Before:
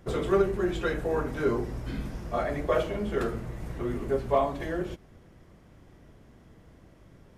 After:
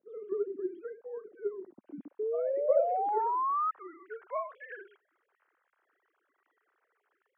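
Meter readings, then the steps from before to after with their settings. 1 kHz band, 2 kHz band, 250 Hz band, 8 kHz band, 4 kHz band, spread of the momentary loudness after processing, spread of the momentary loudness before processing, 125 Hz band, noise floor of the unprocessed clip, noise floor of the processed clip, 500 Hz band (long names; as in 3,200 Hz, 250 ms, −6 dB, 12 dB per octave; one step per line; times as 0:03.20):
+2.0 dB, −13.0 dB, −15.0 dB, can't be measured, below −30 dB, 19 LU, 11 LU, below −30 dB, −56 dBFS, −81 dBFS, −4.5 dB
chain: three sine waves on the formant tracks
sound drawn into the spectrogram rise, 0:02.19–0:03.71, 420–1,300 Hz −27 dBFS
band-pass filter sweep 210 Hz → 1,500 Hz, 0:01.71–0:04.08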